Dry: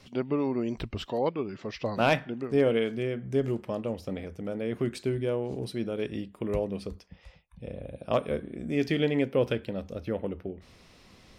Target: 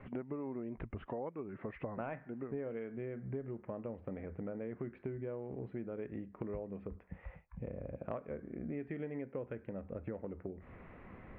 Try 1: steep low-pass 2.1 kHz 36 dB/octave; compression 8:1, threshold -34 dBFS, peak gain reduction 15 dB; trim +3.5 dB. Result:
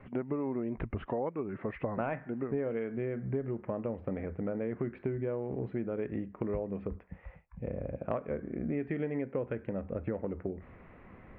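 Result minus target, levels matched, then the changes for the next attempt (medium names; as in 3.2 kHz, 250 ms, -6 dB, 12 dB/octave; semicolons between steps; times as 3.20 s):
compression: peak gain reduction -7.5 dB
change: compression 8:1, threshold -42.5 dBFS, peak gain reduction 22.5 dB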